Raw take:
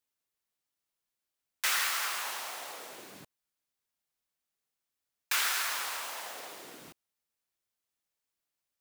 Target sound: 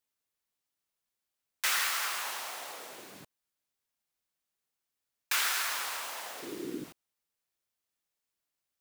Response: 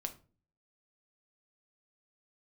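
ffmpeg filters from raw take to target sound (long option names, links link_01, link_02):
-filter_complex "[0:a]asettb=1/sr,asplit=3[link_01][link_02][link_03];[link_01]atrim=end=6.424[link_04];[link_02]atrim=start=6.42:end=6.84,asetpts=PTS-STARTPTS,afade=type=in:duration=0.004:curve=qsin,afade=type=out:start_time=0.416:duration=0.004:curve=qsin,lowshelf=frequency=480:width_type=q:width=3:gain=12[link_05];[link_03]atrim=start=6.836[link_06];[link_04][link_05]acrossfade=duration=0.004:curve1=hsin:curve2=qsin[link_07];[link_07][link_06]acrossfade=duration=0.004:curve1=qsin:curve2=hsin"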